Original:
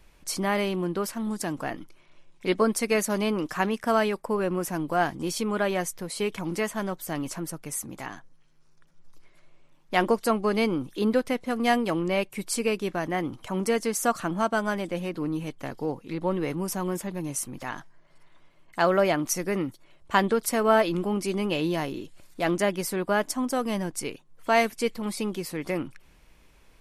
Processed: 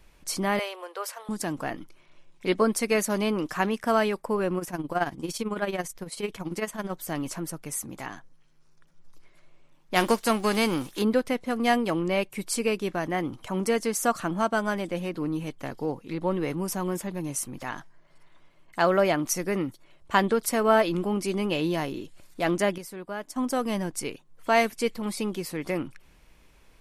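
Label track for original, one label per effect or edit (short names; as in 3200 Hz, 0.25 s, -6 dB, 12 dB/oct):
0.590000	1.290000	elliptic high-pass 480 Hz, stop band 60 dB
4.580000	6.910000	tremolo 18 Hz, depth 71%
9.950000	11.010000	spectral whitening exponent 0.6
22.780000	23.360000	gain -10.5 dB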